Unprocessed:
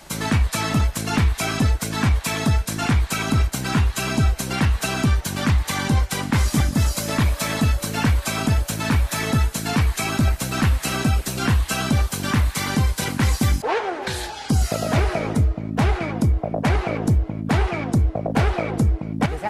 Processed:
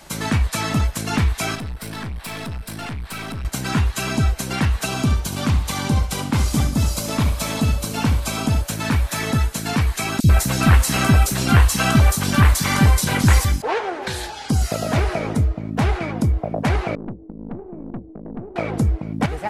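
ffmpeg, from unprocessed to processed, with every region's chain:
ffmpeg -i in.wav -filter_complex "[0:a]asettb=1/sr,asplit=3[link_01][link_02][link_03];[link_01]atrim=end=1.554[link_04];[link_02]atrim=start=1.55:end=3.45,asetpts=PTS-STARTPTS,afade=type=in:duration=0.004:curve=qsin,afade=type=out:start_time=1.896:duration=0.004:curve=qsin,equalizer=frequency=6600:width=4.2:gain=-13,acompressor=threshold=-22dB:ratio=2.5:attack=3.2:release=140:knee=1:detection=peak,aeval=exprs='(tanh(20*val(0)+0.4)-tanh(0.4))/20':channel_layout=same[link_05];[link_03]atrim=start=3.446[link_06];[link_04][link_05]acrossfade=duration=0.004:curve1=hsin:curve2=qsin[link_07];[link_07][link_06]acrossfade=duration=0.004:curve1=qsin:curve2=hsin,asettb=1/sr,asplit=3[link_08][link_09][link_10];[link_08]atrim=end=4.854[link_11];[link_09]atrim=start=4.85:end=8.62,asetpts=PTS-STARTPTS,afade=type=in:duration=0.004:curve=qsin,afade=type=out:start_time=3.766:duration=0.004:curve=qsin,equalizer=frequency=1800:width_type=o:width=0.54:gain=-7,aecho=1:1:70|140:0.299|0.0537,atrim=end_sample=166257[link_12];[link_10]atrim=start=8.616[link_13];[link_11][link_12]acrossfade=duration=0.004:curve1=hsin:curve2=qsin[link_14];[link_14][link_13]acrossfade=duration=0.004:curve1=qsin:curve2=hsin,asettb=1/sr,asplit=3[link_15][link_16][link_17];[link_15]atrim=end=10.204[link_18];[link_16]atrim=start=10.2:end=13.45,asetpts=PTS-STARTPTS,afade=type=in:duration=0.004:curve=qsin,afade=type=out:start_time=3.246:duration=0.004:curve=qsin,acontrast=62,acrossover=split=360|3700[link_19][link_20][link_21];[link_19]adelay=40[link_22];[link_20]adelay=90[link_23];[link_22][link_23][link_21]amix=inputs=3:normalize=0,atrim=end_sample=143325[link_24];[link_17]atrim=start=13.446[link_25];[link_18][link_24]acrossfade=duration=0.004:curve1=hsin:curve2=qsin[link_26];[link_26][link_25]acrossfade=duration=0.004:curve1=qsin:curve2=hsin,asettb=1/sr,asplit=3[link_27][link_28][link_29];[link_27]atrim=end=16.954[link_30];[link_28]atrim=start=16.95:end=18.56,asetpts=PTS-STARTPTS,afade=type=in:duration=0.004:curve=qsin,afade=type=out:start_time=1.606:duration=0.004:curve=qsin,asuperpass=centerf=260:order=4:qfactor=1.2,aeval=exprs='(tanh(20*val(0)+0.65)-tanh(0.65))/20':channel_layout=same[link_31];[link_29]atrim=start=18.556[link_32];[link_30][link_31]acrossfade=duration=0.004:curve1=hsin:curve2=qsin[link_33];[link_33][link_32]acrossfade=duration=0.004:curve1=qsin:curve2=hsin" out.wav

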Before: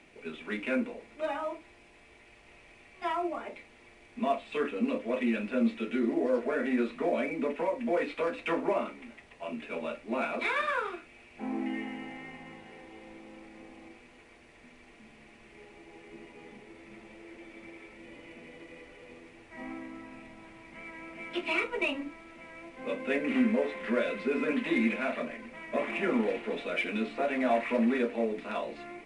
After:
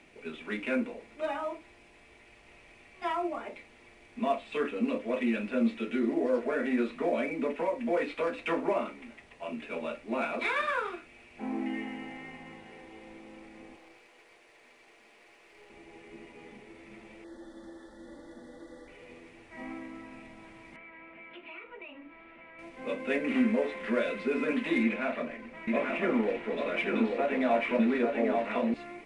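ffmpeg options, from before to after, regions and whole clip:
ffmpeg -i in.wav -filter_complex "[0:a]asettb=1/sr,asplit=3[link_01][link_02][link_03];[link_01]atrim=end=13.764[link_04];[link_02]atrim=start=13.76:end=15.7,asetpts=PTS-STARTPTS,afade=type=in:duration=0.004:curve=qsin,afade=type=out:start_time=1.936:duration=0.004:curve=qsin,highpass=frequency=360:width=0.5412,highpass=frequency=360:width=1.3066,aeval=exprs='clip(val(0),-1,0.00126)':channel_layout=same[link_05];[link_03]atrim=start=15.696[link_06];[link_04][link_05]acrossfade=duration=0.004:curve1=hsin:curve2=qsin[link_07];[link_07][link_06]acrossfade=duration=0.004:curve1=qsin:curve2=hsin,asettb=1/sr,asplit=3[link_08][link_09][link_10];[link_08]atrim=end=17.244[link_11];[link_09]atrim=start=17.24:end=18.88,asetpts=PTS-STARTPTS,afade=type=in:duration=0.004:curve=qsin,afade=type=out:start_time=1.636:duration=0.004:curve=qsin,asuperstop=centerf=2500:order=12:qfactor=1.8,aecho=1:1:3.5:0.52,atrim=end_sample=72324[link_12];[link_10]atrim=start=18.876[link_13];[link_11][link_12]acrossfade=duration=0.004:curve1=hsin:curve2=qsin[link_14];[link_14][link_13]acrossfade=duration=0.004:curve1=qsin:curve2=hsin,asettb=1/sr,asplit=3[link_15][link_16][link_17];[link_15]atrim=end=20.764[link_18];[link_16]atrim=start=20.76:end=22.59,asetpts=PTS-STARTPTS,afade=type=in:duration=0.004:curve=qsin,afade=type=out:start_time=1.826:duration=0.004:curve=qsin,lowshelf=frequency=430:gain=-6.5,acompressor=threshold=-47dB:ratio=3:attack=3.2:release=140:knee=1:detection=peak,lowpass=frequency=3000:width=0.5412,lowpass=frequency=3000:width=1.3066[link_19];[link_17]atrim=start=22.586[link_20];[link_18][link_19]acrossfade=duration=0.004:curve1=hsin:curve2=qsin[link_21];[link_21][link_20]acrossfade=duration=0.004:curve1=qsin:curve2=hsin,asettb=1/sr,asplit=3[link_22][link_23][link_24];[link_22]atrim=end=24.834[link_25];[link_23]atrim=start=24.83:end=28.74,asetpts=PTS-STARTPTS,afade=type=in:duration=0.004:curve=qsin,afade=type=out:start_time=3.906:duration=0.004:curve=qsin,aemphasis=mode=reproduction:type=cd,aecho=1:1:843:0.668,atrim=end_sample=172431[link_26];[link_24]atrim=start=28.736[link_27];[link_25][link_26]acrossfade=duration=0.004:curve1=hsin:curve2=qsin[link_28];[link_28][link_27]acrossfade=duration=0.004:curve1=qsin:curve2=hsin" out.wav

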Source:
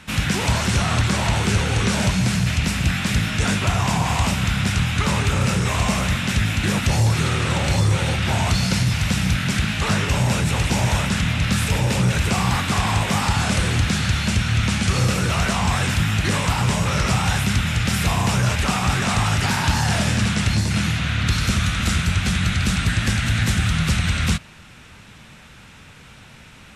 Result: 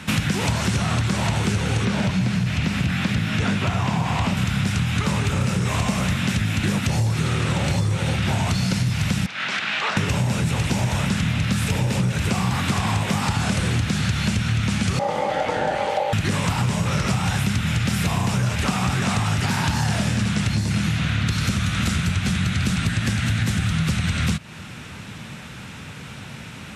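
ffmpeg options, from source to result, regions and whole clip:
ffmpeg -i in.wav -filter_complex "[0:a]asettb=1/sr,asplit=3[link_01][link_02][link_03];[link_01]atrim=end=1.854[link_04];[link_02]atrim=start=1.85:end=4.37,asetpts=PTS-STARTPTS,afade=type=in:duration=0.004:curve=qsin,afade=type=out:start_time=2.516:duration=0.004:curve=qsin,highpass=frequency=64:poles=1,acrossover=split=4600[link_05][link_06];[link_06]acompressor=threshold=-41dB:ratio=4:attack=1:release=60[link_07];[link_05][link_07]amix=inputs=2:normalize=0,asoftclip=type=hard:threshold=-12.5dB[link_08];[link_03]atrim=start=4.366[link_09];[link_04][link_08]acrossfade=duration=0.004:curve1=hsin:curve2=qsin[link_10];[link_10][link_09]acrossfade=duration=0.004:curve1=qsin:curve2=hsin,asettb=1/sr,asplit=3[link_11][link_12][link_13];[link_11]atrim=end=9.264[link_14];[link_12]atrim=start=9.26:end=9.97,asetpts=PTS-STARTPTS,afade=type=in:duration=0.004:curve=qsin,afade=type=out:start_time=0.706:duration=0.004:curve=qsin,acompressor=threshold=-20dB:ratio=4:attack=3.2:release=140:knee=1:detection=peak,highpass=680,lowpass=3800[link_15];[link_13]atrim=start=9.966[link_16];[link_14][link_15]acrossfade=duration=0.004:curve1=hsin:curve2=qsin[link_17];[link_17][link_16]acrossfade=duration=0.004:curve1=qsin:curve2=hsin,asettb=1/sr,asplit=3[link_18][link_19][link_20];[link_18]atrim=end=14.994[link_21];[link_19]atrim=start=14.99:end=16.13,asetpts=PTS-STARTPTS,afade=type=in:duration=0.004:curve=qsin,afade=type=out:start_time=1.136:duration=0.004:curve=qsin,lowpass=frequency=1700:poles=1,aeval=exprs='val(0)*sin(2*PI*690*n/s)':channel_layout=same[link_22];[link_20]atrim=start=16.126[link_23];[link_21][link_22]acrossfade=duration=0.004:curve1=hsin:curve2=qsin[link_24];[link_24][link_23]acrossfade=duration=0.004:curve1=qsin:curve2=hsin,highpass=120,lowshelf=frequency=210:gain=9,acompressor=threshold=-25dB:ratio=6,volume=6dB" out.wav

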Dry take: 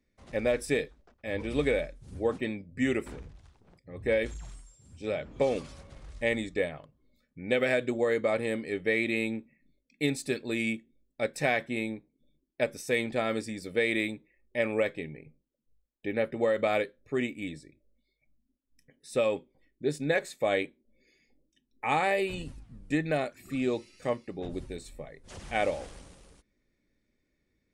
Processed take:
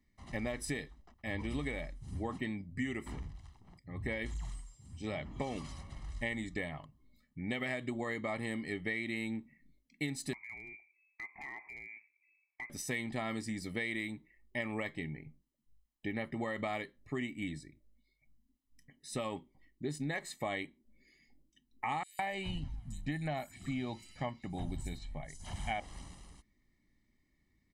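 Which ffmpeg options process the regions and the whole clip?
ffmpeg -i in.wav -filter_complex "[0:a]asettb=1/sr,asplit=3[link_01][link_02][link_03];[link_01]atrim=end=10.334[link_04];[link_02]atrim=start=10.33:end=12.7,asetpts=PTS-STARTPTS,afade=type=in:duration=0.004:curve=qsin,afade=type=out:start_time=2.366:duration=0.004:curve=qsin,lowpass=frequency=2200:width_type=q:width=0.5098,lowpass=frequency=2200:width_type=q:width=0.6013,lowpass=frequency=2200:width_type=q:width=0.9,lowpass=frequency=2200:width_type=q:width=2.563,afreqshift=-2600,acompressor=threshold=-43dB:ratio=10:attack=3.2:release=140:knee=1:detection=peak,aeval=exprs='clip(val(0),-1,0.0106)':channel_layout=same[link_05];[link_03]atrim=start=12.696[link_06];[link_04][link_05]acrossfade=duration=0.004:curve1=hsin:curve2=qsin[link_07];[link_07][link_06]acrossfade=duration=0.004:curve1=qsin:curve2=hsin,asettb=1/sr,asplit=3[link_08][link_09][link_10];[link_08]atrim=end=22.034[link_11];[link_09]atrim=start=22.03:end=25.8,asetpts=PTS-STARTPTS,afade=type=in:duration=0.004:curve=qsin,afade=type=out:start_time=3.766:duration=0.004:curve=qsin,aecho=1:1:1.3:0.44,atrim=end_sample=166257,acrossover=split=5500[link_12][link_13];[link_12]adelay=160[link_14];[link_14][link_13]amix=inputs=2:normalize=0,atrim=end_sample=166257[link_15];[link_10]atrim=start=25.796[link_16];[link_11][link_15]acrossfade=duration=0.004:curve1=hsin:curve2=qsin[link_17];[link_17][link_16]acrossfade=duration=0.004:curve1=qsin:curve2=hsin,aecho=1:1:1:0.72,acompressor=threshold=-32dB:ratio=6,volume=-1.5dB" out.wav

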